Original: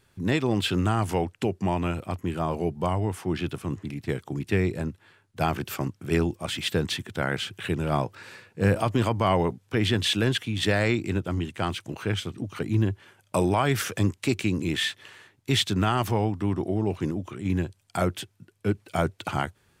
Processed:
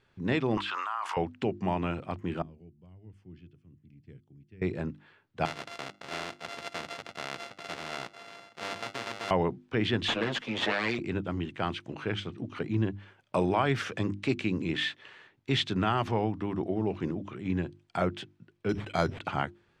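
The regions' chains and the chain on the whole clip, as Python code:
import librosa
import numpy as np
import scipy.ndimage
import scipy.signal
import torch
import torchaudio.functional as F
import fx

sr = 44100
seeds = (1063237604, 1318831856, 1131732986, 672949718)

y = fx.chain(x, sr, fx.ladder_highpass(hz=960.0, resonance_pct=65),
    fx.env_flatten(amount_pct=100), at=(0.57, 1.17))
y = fx.chain(y, sr, fx.notch(hz=3800.0, q=6.3),
    fx.tremolo(hz=1.2, depth=0.49),
    fx.tone_stack(knobs='10-0-1'), at=(2.42, 4.62))
y = fx.chain(y, sr, fx.sample_sort(block=64),
    fx.highpass(hz=610.0, slope=6),
    fx.spectral_comp(ratio=2.0), at=(5.45, 9.31))
y = fx.chain(y, sr, fx.lower_of_two(delay_ms=8.6),
    fx.highpass(hz=350.0, slope=6),
    fx.band_squash(depth_pct=100), at=(10.08, 10.99))
y = fx.chain(y, sr, fx.high_shelf(hz=2800.0, db=11.0),
    fx.resample_bad(factor=8, down='filtered', up='hold'),
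    fx.sustainer(db_per_s=110.0), at=(18.69, 19.21))
y = scipy.signal.sosfilt(scipy.signal.butter(2, 3700.0, 'lowpass', fs=sr, output='sos'), y)
y = fx.peak_eq(y, sr, hz=83.0, db=-5.0, octaves=1.0)
y = fx.hum_notches(y, sr, base_hz=50, count=7)
y = y * librosa.db_to_amplitude(-2.5)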